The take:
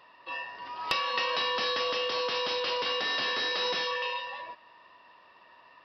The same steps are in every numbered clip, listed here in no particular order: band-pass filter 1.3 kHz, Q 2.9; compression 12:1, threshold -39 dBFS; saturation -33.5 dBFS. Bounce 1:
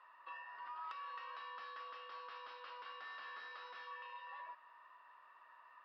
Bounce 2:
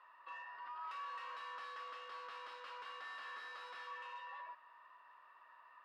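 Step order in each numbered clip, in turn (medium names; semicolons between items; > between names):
compression > band-pass filter > saturation; saturation > compression > band-pass filter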